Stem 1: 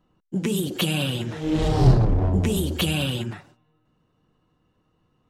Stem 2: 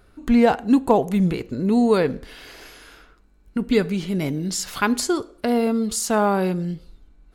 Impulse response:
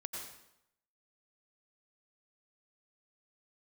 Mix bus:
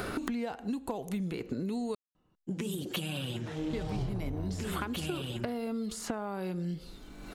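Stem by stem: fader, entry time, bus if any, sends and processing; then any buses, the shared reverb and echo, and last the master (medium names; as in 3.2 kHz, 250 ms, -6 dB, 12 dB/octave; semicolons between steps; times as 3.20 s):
-5.5 dB, 2.15 s, no send, none
-6.5 dB, 0.00 s, muted 1.95–3.73 s, no send, three bands compressed up and down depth 100%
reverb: none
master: compression 6:1, threshold -32 dBFS, peak gain reduction 15.5 dB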